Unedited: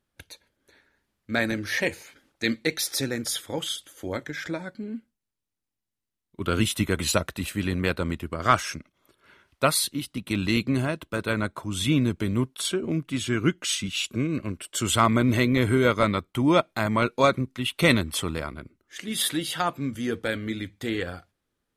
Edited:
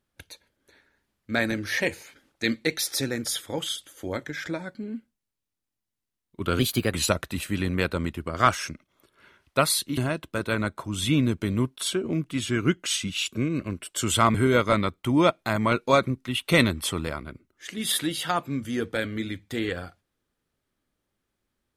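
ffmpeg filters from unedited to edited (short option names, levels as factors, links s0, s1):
-filter_complex "[0:a]asplit=5[s0][s1][s2][s3][s4];[s0]atrim=end=6.594[s5];[s1]atrim=start=6.59:end=6.99,asetpts=PTS-STARTPTS,asetrate=51156,aresample=44100[s6];[s2]atrim=start=6.986:end=10.032[s7];[s3]atrim=start=10.758:end=15.132[s8];[s4]atrim=start=15.648[s9];[s5][s6]acrossfade=d=0.004:c1=hsin:c2=hsin[s10];[s10][s7]acrossfade=d=0.004:c1=hsin:c2=hsin[s11];[s11][s8]acrossfade=d=0.004:c1=hsin:c2=hsin[s12];[s12][s9]acrossfade=d=0.004:c1=hsin:c2=hsin"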